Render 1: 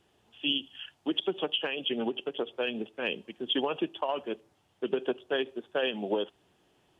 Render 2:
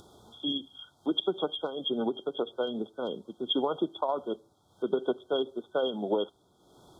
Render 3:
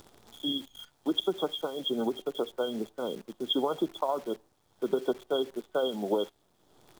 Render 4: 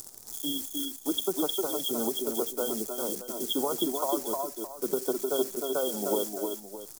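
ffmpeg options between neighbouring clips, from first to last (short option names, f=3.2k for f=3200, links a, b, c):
-af "afftfilt=real='re*(1-between(b*sr/4096,1500,3200))':imag='im*(1-between(b*sr/4096,1500,3200))':win_size=4096:overlap=0.75,acompressor=mode=upward:threshold=-46dB:ratio=2.5,volume=1.5dB"
-af "acrusher=bits=9:dc=4:mix=0:aa=0.000001"
-filter_complex "[0:a]asplit=2[a][b];[b]aecho=0:1:309:0.447[c];[a][c]amix=inputs=2:normalize=0,aexciter=amount=7.8:drive=6.9:freq=4.9k,asplit=2[d][e];[e]aecho=0:1:306:0.473[f];[d][f]amix=inputs=2:normalize=0,volume=-1.5dB"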